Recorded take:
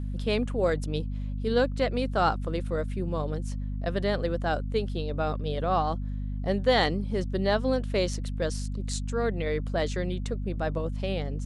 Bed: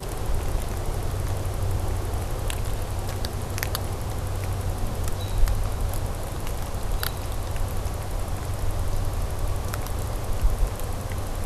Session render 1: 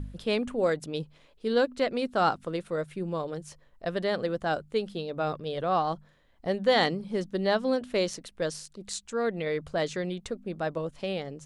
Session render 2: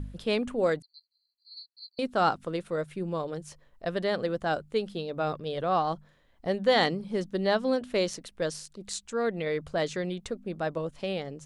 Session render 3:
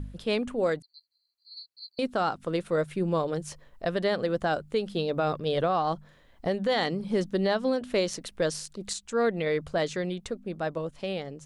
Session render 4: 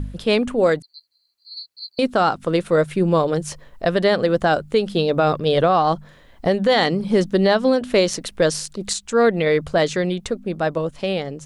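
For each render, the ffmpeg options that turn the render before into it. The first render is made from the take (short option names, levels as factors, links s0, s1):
-af "bandreject=f=50:t=h:w=4,bandreject=f=100:t=h:w=4,bandreject=f=150:t=h:w=4,bandreject=f=200:t=h:w=4,bandreject=f=250:t=h:w=4"
-filter_complex "[0:a]asettb=1/sr,asplit=3[s0][s1][s2];[s0]atrim=end=0.824[s3];[s1]atrim=start=0.82:end=1.99,asetpts=PTS-STARTPTS,afade=t=in:d=0.004:c=qsin,afade=t=out:st=1.166:d=0.004:c=qsin,asuperpass=centerf=4400:order=20:qfactor=6.3[s4];[s2]atrim=start=1.986[s5];[s3][s4]acrossfade=d=0.004:c1=hsin:c2=qsin[s6];[s6][s5]acrossfade=d=0.004:c1=qsin:c2=hsin"
-af "dynaudnorm=f=230:g=21:m=2.11,alimiter=limit=0.141:level=0:latency=1:release=274"
-af "volume=2.99"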